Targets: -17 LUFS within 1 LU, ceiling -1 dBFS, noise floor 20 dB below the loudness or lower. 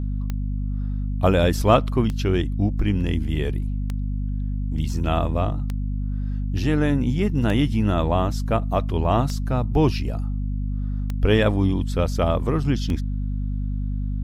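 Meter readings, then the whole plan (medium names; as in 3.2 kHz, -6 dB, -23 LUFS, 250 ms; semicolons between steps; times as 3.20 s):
clicks found 8; hum 50 Hz; highest harmonic 250 Hz; hum level -22 dBFS; loudness -23.5 LUFS; peak level -2.5 dBFS; loudness target -17.0 LUFS
-> de-click; hum notches 50/100/150/200/250 Hz; trim +6.5 dB; peak limiter -1 dBFS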